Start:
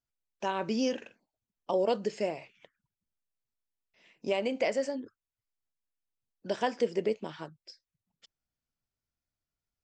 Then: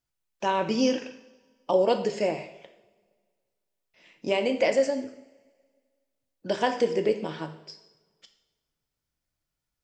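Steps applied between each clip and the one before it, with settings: two-slope reverb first 0.7 s, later 1.8 s, from -18 dB, DRR 6.5 dB; trim +5 dB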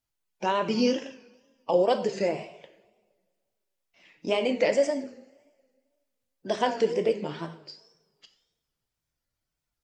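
coarse spectral quantiser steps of 15 dB; wow and flutter 100 cents

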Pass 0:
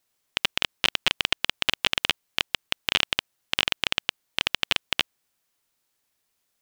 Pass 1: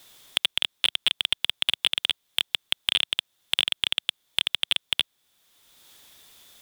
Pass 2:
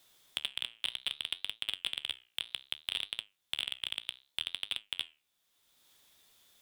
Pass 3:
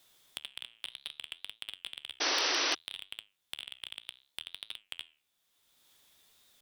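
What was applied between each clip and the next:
in parallel at -10 dB: sine folder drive 9 dB, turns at -1.5 dBFS; on the sum: peaking EQ 3.5 kHz +12.5 dB 0.24 oct; three bands compressed up and down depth 70%; trim -7.5 dB
flange 0.63 Hz, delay 8.6 ms, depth 9.5 ms, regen +75%; trim -7.5 dB
compression, threshold -37 dBFS, peak gain reduction 9.5 dB; painted sound noise, 2.20–2.75 s, 270–6100 Hz -30 dBFS; warped record 33 1/3 rpm, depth 100 cents

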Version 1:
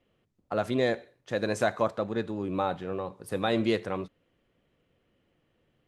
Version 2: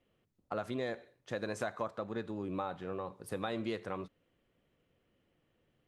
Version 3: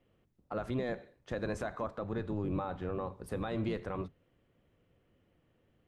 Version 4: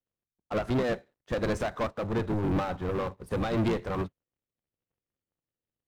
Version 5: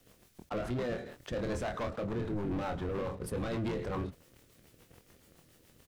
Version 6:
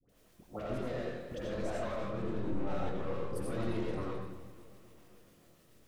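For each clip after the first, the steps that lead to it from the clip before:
dynamic bell 1.2 kHz, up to +4 dB, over -43 dBFS, Q 1.7; compression 3:1, threshold -31 dBFS, peak gain reduction 9 dB; trim -4 dB
octave divider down 1 oct, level -2 dB; treble shelf 3.1 kHz -8 dB; peak limiter -29 dBFS, peak gain reduction 6.5 dB; trim +3.5 dB
waveshaping leveller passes 3; upward expansion 2.5:1, over -44 dBFS; trim +4.5 dB
rotary cabinet horn 7 Hz; doubling 25 ms -7 dB; level flattener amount 70%; trim -8 dB
phase dispersion highs, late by 92 ms, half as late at 1 kHz; reverberation RT60 0.90 s, pre-delay 45 ms, DRR -3 dB; modulated delay 262 ms, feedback 63%, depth 62 cents, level -18 dB; trim -7 dB

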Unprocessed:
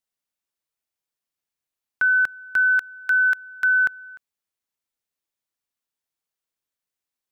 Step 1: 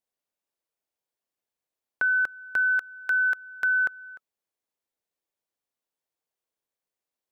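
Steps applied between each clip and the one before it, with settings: peaking EQ 520 Hz +9 dB 2 oct; band-stop 1.3 kHz, Q 27; in parallel at -3 dB: compression, threshold -25 dBFS, peak gain reduction 10 dB; on the sum: trim -9 dB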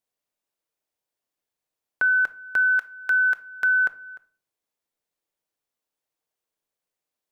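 simulated room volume 450 m³, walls furnished, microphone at 0.46 m; trim +2 dB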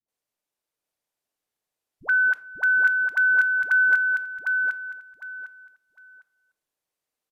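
phase dispersion highs, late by 85 ms, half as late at 470 Hz; resampled via 32 kHz; feedback delay 755 ms, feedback 22%, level -4 dB

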